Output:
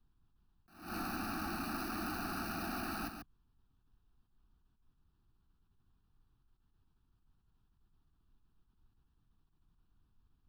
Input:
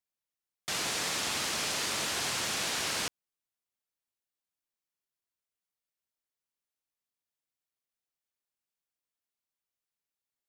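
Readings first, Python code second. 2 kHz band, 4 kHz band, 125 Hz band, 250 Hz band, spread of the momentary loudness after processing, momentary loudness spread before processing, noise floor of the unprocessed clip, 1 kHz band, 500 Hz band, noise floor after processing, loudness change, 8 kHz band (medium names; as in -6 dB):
-9.5 dB, -18.0 dB, -0.5 dB, +4.0 dB, 8 LU, 4 LU, under -85 dBFS, -3.0 dB, -7.5 dB, -76 dBFS, -9.5 dB, -20.5 dB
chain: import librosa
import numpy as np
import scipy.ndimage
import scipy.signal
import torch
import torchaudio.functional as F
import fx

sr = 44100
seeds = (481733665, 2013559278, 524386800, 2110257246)

p1 = scipy.signal.medfilt(x, 25)
p2 = scipy.signal.sosfilt(scipy.signal.butter(4, 56.0, 'highpass', fs=sr, output='sos'), p1)
p3 = fx.peak_eq(p2, sr, hz=2500.0, db=5.0, octaves=0.53)
p4 = fx.leveller(p3, sr, passes=5)
p5 = fx.fixed_phaser(p4, sr, hz=660.0, stages=8)
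p6 = fx.dmg_noise_colour(p5, sr, seeds[0], colour='brown', level_db=-68.0)
p7 = fx.fixed_phaser(p6, sr, hz=2100.0, stages=6)
p8 = p7 + fx.echo_single(p7, sr, ms=140, db=-7.5, dry=0)
p9 = fx.attack_slew(p8, sr, db_per_s=110.0)
y = p9 * 10.0 ** (-1.0 / 20.0)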